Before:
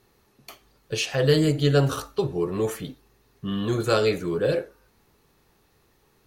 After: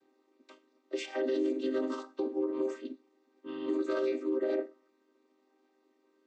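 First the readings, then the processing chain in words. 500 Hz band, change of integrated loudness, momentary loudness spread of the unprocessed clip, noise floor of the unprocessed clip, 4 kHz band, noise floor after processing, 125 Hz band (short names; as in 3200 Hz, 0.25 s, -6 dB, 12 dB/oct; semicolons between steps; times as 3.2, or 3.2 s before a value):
-8.0 dB, -9.5 dB, 13 LU, -64 dBFS, -18.0 dB, -73 dBFS, under -40 dB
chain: chord vocoder minor triad, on C4; limiter -19 dBFS, peak gain reduction 10 dB; gain -4 dB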